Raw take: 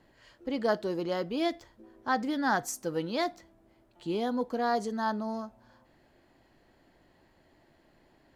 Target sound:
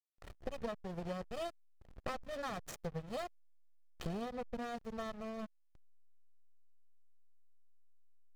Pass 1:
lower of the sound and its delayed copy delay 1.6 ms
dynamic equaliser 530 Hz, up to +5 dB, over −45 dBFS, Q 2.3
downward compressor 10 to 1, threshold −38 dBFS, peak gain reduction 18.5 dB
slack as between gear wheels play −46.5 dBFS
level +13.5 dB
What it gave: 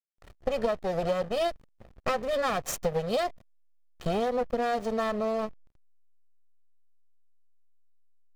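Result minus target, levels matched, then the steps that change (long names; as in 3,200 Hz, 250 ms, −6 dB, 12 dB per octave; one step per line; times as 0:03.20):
downward compressor: peak gain reduction −9 dB; 125 Hz band −5.5 dB
change: dynamic equaliser 150 Hz, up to +5 dB, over −45 dBFS, Q 2.3
change: downward compressor 10 to 1, threshold −50 dBFS, peak gain reduction 27.5 dB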